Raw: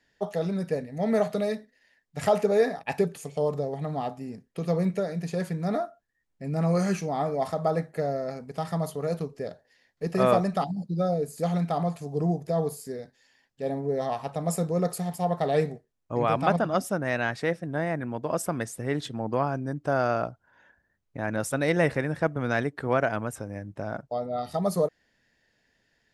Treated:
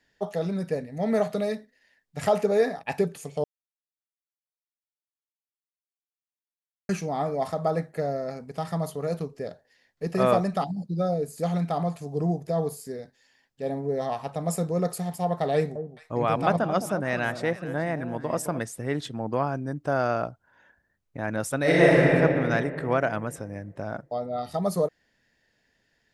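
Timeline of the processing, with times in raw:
3.44–6.89 mute
15.54–18.61 echo with dull and thin repeats by turns 0.213 s, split 960 Hz, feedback 56%, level -10 dB
21.59–22.15 reverb throw, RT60 2.5 s, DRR -6.5 dB

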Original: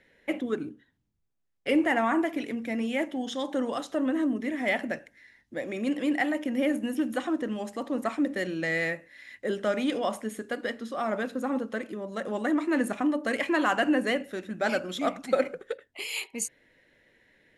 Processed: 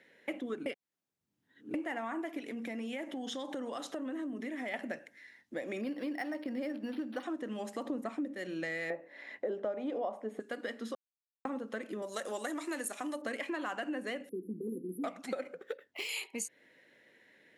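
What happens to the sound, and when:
0.66–1.74 reverse
2.39–4.74 compressor 3:1, threshold -35 dBFS
5.81–7.23 decimation joined by straight lines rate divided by 6×
7.85–8.36 low shelf 490 Hz +10.5 dB
8.9–10.4 EQ curve 120 Hz 0 dB, 420 Hz +11 dB, 760 Hz +14 dB, 1500 Hz +1 dB, 4000 Hz -5 dB, 9800 Hz -13 dB
10.95–11.45 mute
12.02–13.22 tone controls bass -14 dB, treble +15 dB
14.29–15.04 brick-wall FIR band-stop 500–10000 Hz
15.56–16.09 decimation joined by straight lines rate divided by 3×
whole clip: HPF 190 Hz 12 dB/oct; compressor, threshold -35 dBFS

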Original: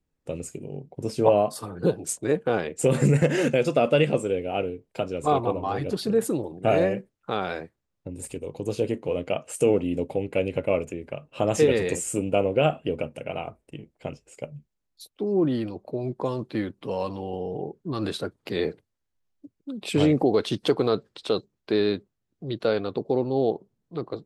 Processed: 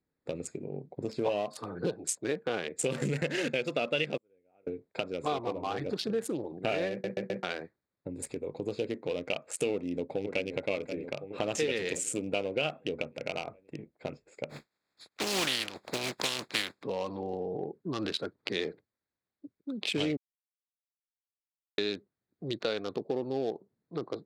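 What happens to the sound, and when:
4.17–4.67 flipped gate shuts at -25 dBFS, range -38 dB
6.91 stutter in place 0.13 s, 4 plays
9.71–10.52 echo throw 0.53 s, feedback 55%, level -10.5 dB
14.49–16.82 spectral contrast lowered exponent 0.33
20.17–21.78 mute
whole clip: Wiener smoothing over 15 samples; weighting filter D; compressor 2.5:1, threshold -32 dBFS

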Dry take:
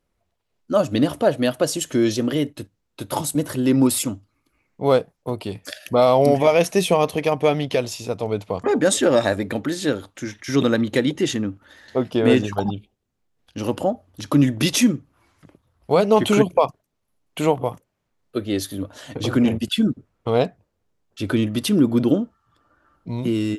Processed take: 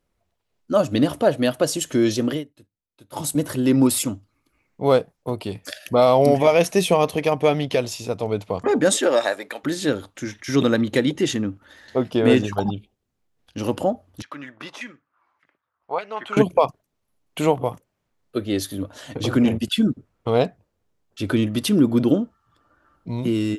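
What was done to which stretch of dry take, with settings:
2.31–3.25 dip -18.5 dB, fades 0.13 s
8.96–9.63 HPF 310 Hz -> 900 Hz
14.22–16.37 LFO band-pass saw down 1.7 Hz 910–2100 Hz

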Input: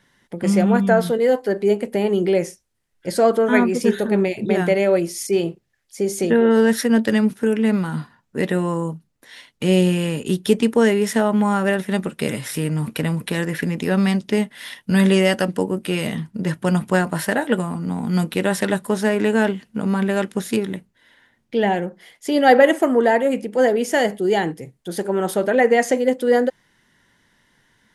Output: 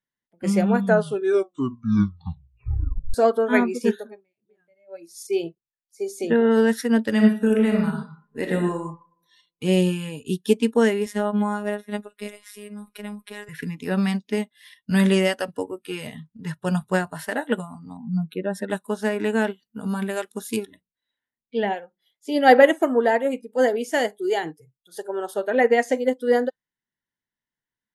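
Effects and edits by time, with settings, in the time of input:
0.85 tape stop 2.29 s
3.9–5.18 dip -21 dB, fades 0.31 s
7.11–8.84 reverb throw, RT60 1 s, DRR 1 dB
11.06–13.49 robotiser 207 Hz
17.97–18.7 spectral contrast raised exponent 1.6
19.51–20.66 high shelf 7400 Hz +11 dB
23.47–25.15 high shelf 4100 Hz +2.5 dB
whole clip: spectral noise reduction 18 dB; upward expander 1.5:1, over -37 dBFS

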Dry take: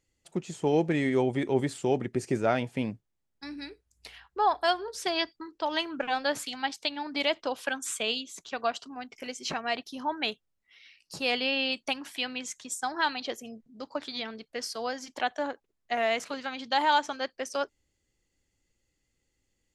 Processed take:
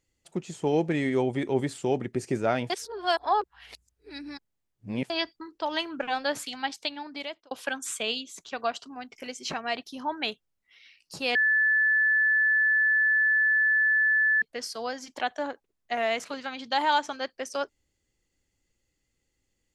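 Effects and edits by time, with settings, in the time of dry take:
2.7–5.1 reverse
6.8–7.51 fade out linear
11.35–14.42 bleep 1740 Hz -19.5 dBFS

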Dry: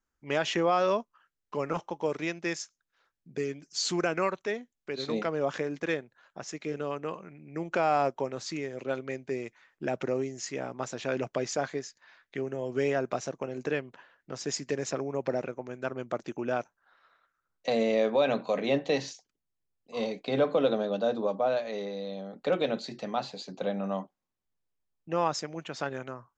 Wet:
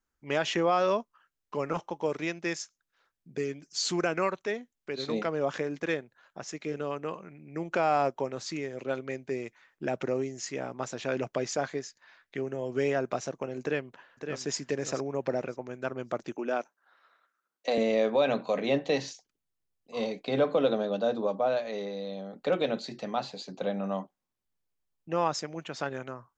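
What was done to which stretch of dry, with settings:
13.61–14.44 echo throw 0.56 s, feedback 20%, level -7 dB
16.35–17.78 HPF 220 Hz 24 dB/oct

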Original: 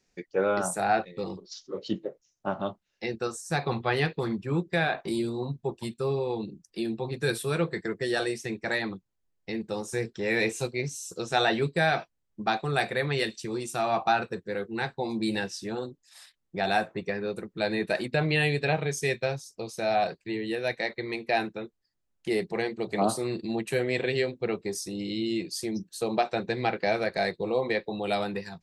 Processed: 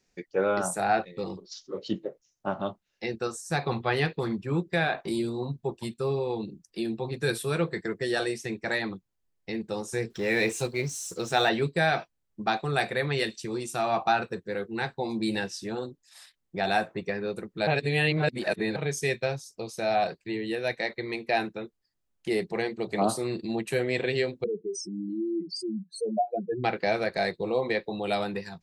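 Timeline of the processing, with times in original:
10.1–11.49 G.711 law mismatch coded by mu
17.67–18.76 reverse
24.44–26.64 spectral contrast raised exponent 3.9

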